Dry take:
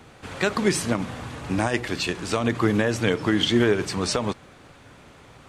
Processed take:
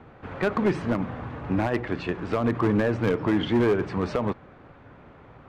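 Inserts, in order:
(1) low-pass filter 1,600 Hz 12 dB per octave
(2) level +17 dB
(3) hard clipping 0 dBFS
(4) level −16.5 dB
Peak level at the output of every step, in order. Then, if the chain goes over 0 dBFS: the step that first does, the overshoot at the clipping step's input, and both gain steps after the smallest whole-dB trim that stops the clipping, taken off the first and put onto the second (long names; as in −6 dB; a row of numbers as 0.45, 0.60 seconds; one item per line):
−9.5, +7.5, 0.0, −16.5 dBFS
step 2, 7.5 dB
step 2 +9 dB, step 4 −8.5 dB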